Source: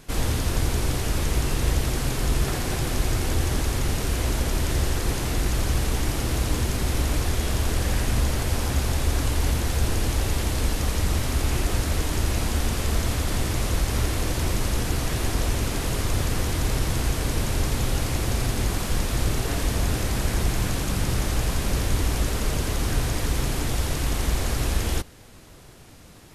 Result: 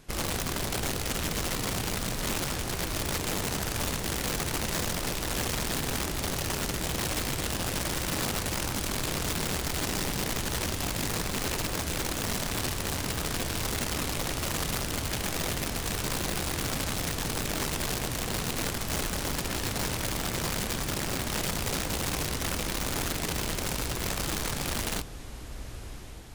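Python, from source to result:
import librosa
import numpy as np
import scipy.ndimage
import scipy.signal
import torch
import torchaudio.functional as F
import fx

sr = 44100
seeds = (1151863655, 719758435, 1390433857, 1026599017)

y = fx.echo_diffused(x, sr, ms=1120, feedback_pct=47, wet_db=-12.0)
y = (np.mod(10.0 ** (19.0 / 20.0) * y + 1.0, 2.0) - 1.0) / 10.0 ** (19.0 / 20.0)
y = fx.doppler_dist(y, sr, depth_ms=0.43)
y = F.gain(torch.from_numpy(y), -6.0).numpy()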